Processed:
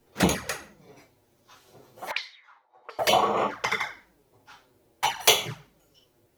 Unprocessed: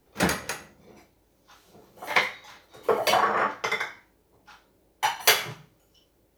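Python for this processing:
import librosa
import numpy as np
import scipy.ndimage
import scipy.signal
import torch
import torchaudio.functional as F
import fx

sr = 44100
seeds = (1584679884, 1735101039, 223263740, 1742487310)

y = fx.auto_wah(x, sr, base_hz=670.0, top_hz=4600.0, q=4.4, full_db=-22.5, direction='up', at=(2.11, 2.99))
y = fx.env_flanger(y, sr, rest_ms=8.8, full_db=-20.5)
y = F.gain(torch.from_numpy(y), 4.0).numpy()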